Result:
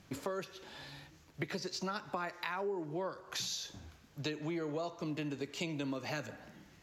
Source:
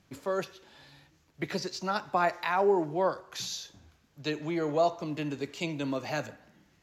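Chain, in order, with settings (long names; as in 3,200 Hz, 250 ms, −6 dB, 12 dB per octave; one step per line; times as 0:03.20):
dynamic equaliser 730 Hz, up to −8 dB, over −42 dBFS, Q 2.5
downward compressor 6 to 1, threshold −41 dBFS, peak gain reduction 18 dB
level +5 dB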